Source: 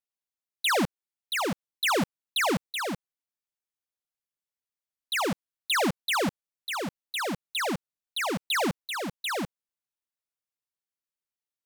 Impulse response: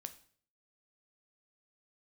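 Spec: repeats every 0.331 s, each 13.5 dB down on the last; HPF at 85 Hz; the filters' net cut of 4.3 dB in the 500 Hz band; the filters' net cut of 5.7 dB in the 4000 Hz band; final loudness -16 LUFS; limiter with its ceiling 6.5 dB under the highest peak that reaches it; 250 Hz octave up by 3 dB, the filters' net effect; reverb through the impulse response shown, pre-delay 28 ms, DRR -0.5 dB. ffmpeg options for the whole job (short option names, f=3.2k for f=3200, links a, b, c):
-filter_complex "[0:a]highpass=85,equalizer=f=250:t=o:g=6,equalizer=f=500:t=o:g=-7.5,equalizer=f=4k:t=o:g=-7.5,alimiter=limit=-23dB:level=0:latency=1,aecho=1:1:331|662:0.211|0.0444,asplit=2[a][b];[1:a]atrim=start_sample=2205,adelay=28[c];[b][c]afir=irnorm=-1:irlink=0,volume=5dB[d];[a][d]amix=inputs=2:normalize=0,volume=12dB"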